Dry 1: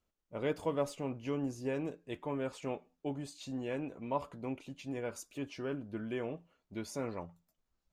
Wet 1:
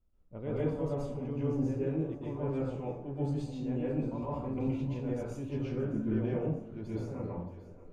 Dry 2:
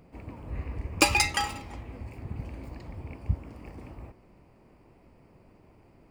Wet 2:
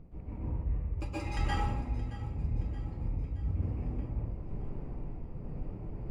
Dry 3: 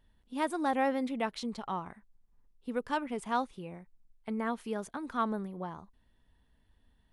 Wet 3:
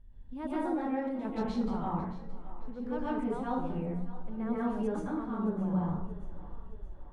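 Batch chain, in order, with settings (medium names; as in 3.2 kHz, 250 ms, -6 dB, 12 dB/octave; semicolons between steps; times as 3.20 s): tilt EQ -4 dB/octave; de-hum 91.37 Hz, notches 12; reverse; compression 6:1, threshold -35 dBFS; reverse; random-step tremolo 3.2 Hz; on a send: two-band feedback delay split 330 Hz, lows 252 ms, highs 623 ms, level -16 dB; on the sum: plate-style reverb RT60 0.61 s, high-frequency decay 0.7×, pre-delay 110 ms, DRR -7.5 dB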